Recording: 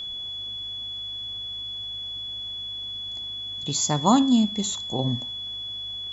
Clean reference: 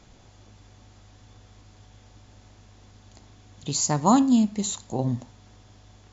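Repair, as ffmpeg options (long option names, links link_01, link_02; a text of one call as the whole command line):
ffmpeg -i in.wav -af "bandreject=frequency=3400:width=30" out.wav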